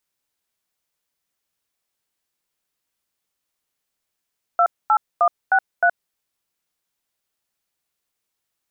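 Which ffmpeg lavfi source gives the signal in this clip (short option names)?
-f lavfi -i "aevalsrc='0.178*clip(min(mod(t,0.309),0.071-mod(t,0.309))/0.002,0,1)*(eq(floor(t/0.309),0)*(sin(2*PI*697*mod(t,0.309))+sin(2*PI*1336*mod(t,0.309)))+eq(floor(t/0.309),1)*(sin(2*PI*852*mod(t,0.309))+sin(2*PI*1336*mod(t,0.309)))+eq(floor(t/0.309),2)*(sin(2*PI*697*mod(t,0.309))+sin(2*PI*1209*mod(t,0.309)))+eq(floor(t/0.309),3)*(sin(2*PI*770*mod(t,0.309))+sin(2*PI*1477*mod(t,0.309)))+eq(floor(t/0.309),4)*(sin(2*PI*697*mod(t,0.309))+sin(2*PI*1477*mod(t,0.309))))':d=1.545:s=44100"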